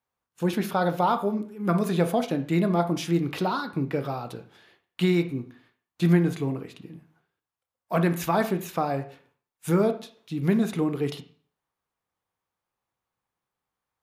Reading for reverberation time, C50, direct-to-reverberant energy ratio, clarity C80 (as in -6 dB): 0.45 s, 12.5 dB, 8.0 dB, 17.5 dB